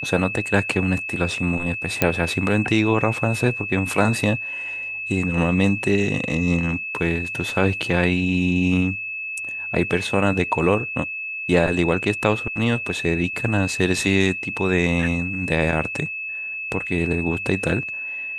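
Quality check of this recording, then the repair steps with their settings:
whine 2.6 kHz -27 dBFS
2.02 s: pop -2 dBFS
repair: de-click; band-stop 2.6 kHz, Q 30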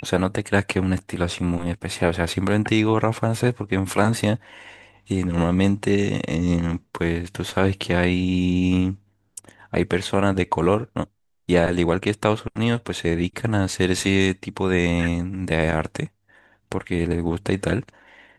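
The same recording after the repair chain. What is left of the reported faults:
nothing left

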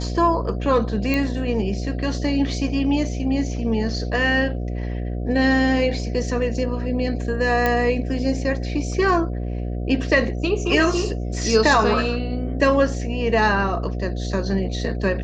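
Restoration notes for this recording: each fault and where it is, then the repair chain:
buzz 60 Hz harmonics 12 -26 dBFS
1.14 s: pop -10 dBFS
7.66 s: pop -8 dBFS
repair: de-click; de-hum 60 Hz, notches 12

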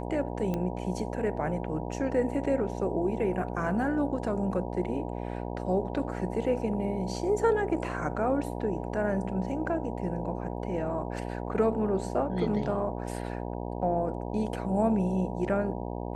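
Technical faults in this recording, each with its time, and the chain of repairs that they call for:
buzz 60 Hz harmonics 16 -35 dBFS
0.54 s: pop -19 dBFS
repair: de-click; de-hum 60 Hz, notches 16

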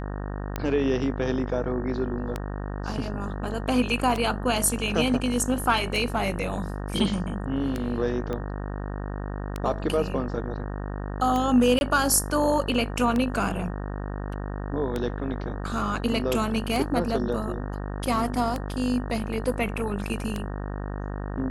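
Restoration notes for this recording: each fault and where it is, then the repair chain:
buzz 50 Hz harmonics 37 -32 dBFS
tick 33 1/3 rpm -14 dBFS
8.33 s: pop -19 dBFS
11.79–11.81 s: dropout 21 ms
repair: de-click; de-hum 50 Hz, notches 37; interpolate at 11.79 s, 21 ms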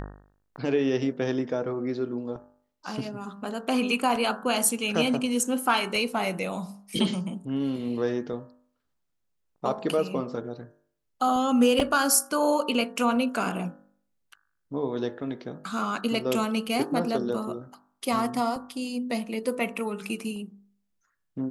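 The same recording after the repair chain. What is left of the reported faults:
8.33 s: pop

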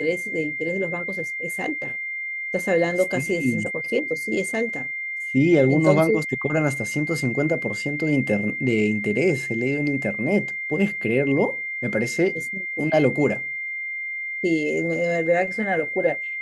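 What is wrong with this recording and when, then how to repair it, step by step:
whine 2.1 kHz -27 dBFS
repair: band-stop 2.1 kHz, Q 30

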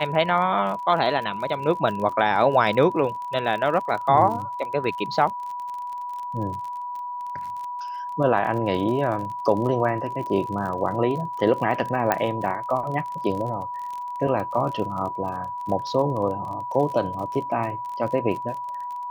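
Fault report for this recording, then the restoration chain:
crackle 40 per s -31 dBFS
whine 980 Hz -29 dBFS
12.12 s: pop -7 dBFS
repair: de-click; band-stop 980 Hz, Q 30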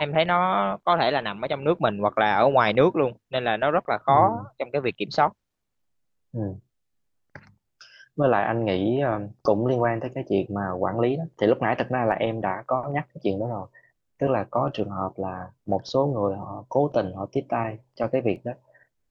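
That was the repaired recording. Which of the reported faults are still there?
12.12 s: pop

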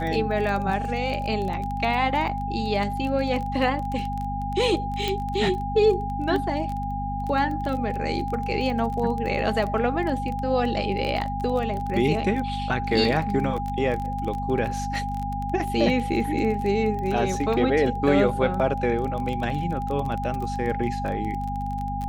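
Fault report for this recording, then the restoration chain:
crackle 20 per s -28 dBFS
hum 50 Hz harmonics 5 -31 dBFS
whine 810 Hz -29 dBFS
5.08 s: pop -12 dBFS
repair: de-click; de-hum 50 Hz, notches 5; band-stop 810 Hz, Q 30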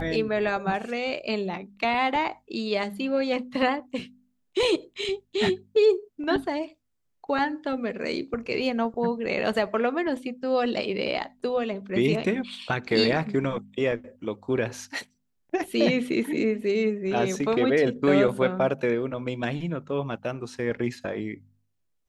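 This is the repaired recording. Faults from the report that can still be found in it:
nothing left

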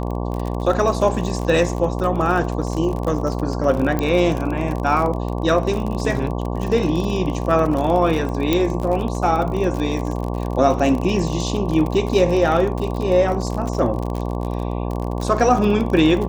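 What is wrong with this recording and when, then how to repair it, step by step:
buzz 60 Hz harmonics 19 -24 dBFS
crackle 43 per s -24 dBFS
3.99 s: pop -9 dBFS
8.53 s: pop -5 dBFS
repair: de-click; de-hum 60 Hz, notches 19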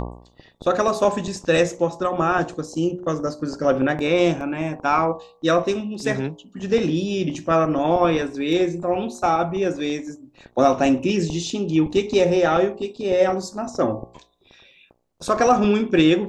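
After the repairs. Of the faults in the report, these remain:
3.99 s: pop
8.53 s: pop

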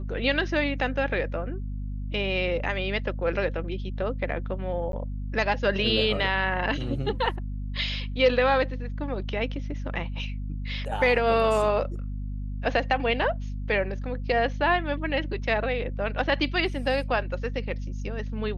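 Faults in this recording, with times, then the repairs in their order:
hum 50 Hz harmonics 5 -32 dBFS
4.92–4.93 s: dropout 12 ms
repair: de-hum 50 Hz, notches 5; interpolate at 4.92 s, 12 ms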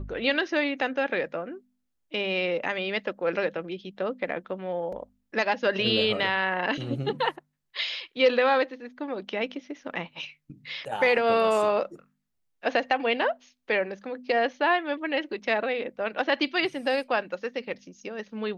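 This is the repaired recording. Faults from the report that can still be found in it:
nothing left

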